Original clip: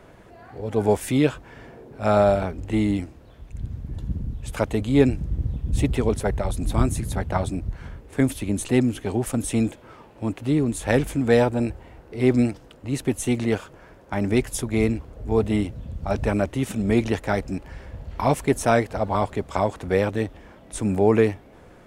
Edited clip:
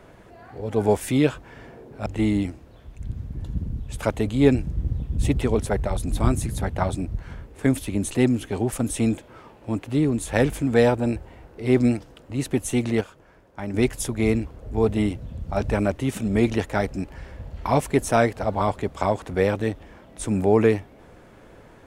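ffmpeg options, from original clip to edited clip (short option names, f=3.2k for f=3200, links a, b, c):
-filter_complex "[0:a]asplit=4[a][b][c][d];[a]atrim=end=2.062[e];[b]atrim=start=2.598:end=13.552[f];[c]atrim=start=13.548:end=14.282,asetpts=PTS-STARTPTS,volume=-6.5dB[g];[d]atrim=start=14.278[h];[e][f]acrossfade=d=0.004:c1=hsin:c2=hsin[i];[i][g]acrossfade=d=0.004:c1=hsin:c2=hsin[j];[j][h]acrossfade=d=0.004:c1=hsin:c2=hsin"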